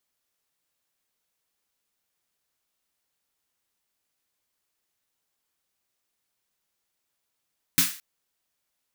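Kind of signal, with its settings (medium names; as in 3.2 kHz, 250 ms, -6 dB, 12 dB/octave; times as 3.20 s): snare drum length 0.22 s, tones 170 Hz, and 270 Hz, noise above 1.3 kHz, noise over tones 9 dB, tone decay 0.21 s, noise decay 0.40 s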